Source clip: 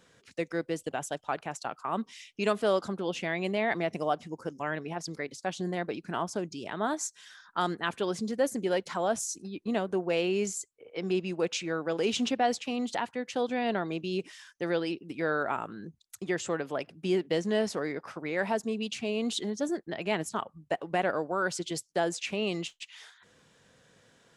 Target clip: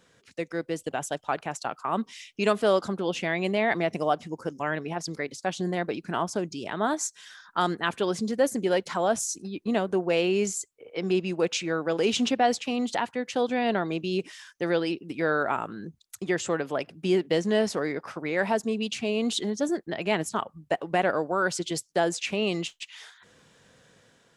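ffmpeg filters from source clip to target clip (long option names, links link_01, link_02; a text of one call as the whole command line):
ffmpeg -i in.wav -af "dynaudnorm=framelen=530:gausssize=3:maxgain=4dB" out.wav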